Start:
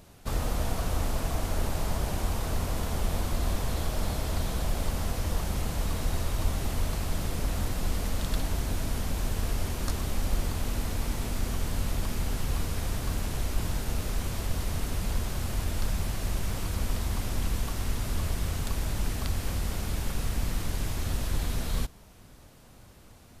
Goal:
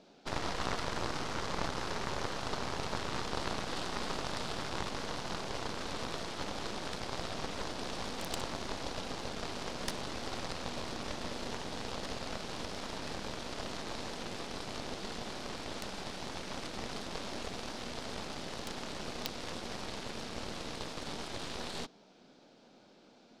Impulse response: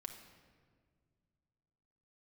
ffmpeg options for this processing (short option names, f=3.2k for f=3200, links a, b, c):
-af "highpass=f=210:w=0.5412,highpass=f=210:w=1.3066,equalizer=f=1.1k:t=q:w=4:g=-9,equalizer=f=1.9k:t=q:w=4:g=-9,equalizer=f=2.8k:t=q:w=4:g=-4,lowpass=f=5.1k:w=0.5412,lowpass=f=5.1k:w=1.3066,aeval=exprs='0.106*(cos(1*acos(clip(val(0)/0.106,-1,1)))-cos(1*PI/2))+0.0266*(cos(6*acos(clip(val(0)/0.106,-1,1)))-cos(6*PI/2))+0.0237*(cos(7*acos(clip(val(0)/0.106,-1,1)))-cos(7*PI/2))':c=same,volume=4dB"